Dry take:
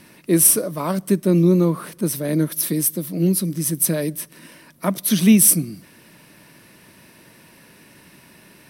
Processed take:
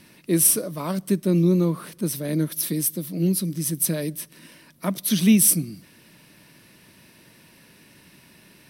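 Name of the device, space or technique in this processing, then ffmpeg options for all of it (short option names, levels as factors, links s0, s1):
presence and air boost: -af "lowshelf=f=360:g=5.5,equalizer=f=3800:t=o:w=1.9:g=6,highshelf=f=11000:g=5,volume=0.422"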